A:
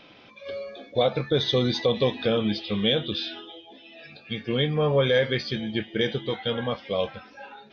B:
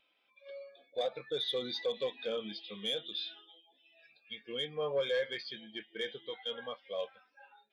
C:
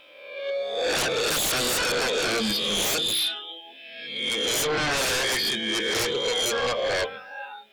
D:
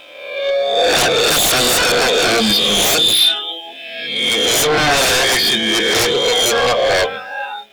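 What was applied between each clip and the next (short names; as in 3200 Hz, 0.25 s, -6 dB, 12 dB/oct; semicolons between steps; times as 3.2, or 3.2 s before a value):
HPF 1000 Hz 6 dB/oct; hard clip -24.5 dBFS, distortion -12 dB; spectral expander 1.5:1
spectral swells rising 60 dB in 0.92 s; sine folder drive 15 dB, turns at -21.5 dBFS; de-hum 47.21 Hz, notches 12
sample leveller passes 1; small resonant body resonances 710/3600 Hz, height 8 dB; gain +8.5 dB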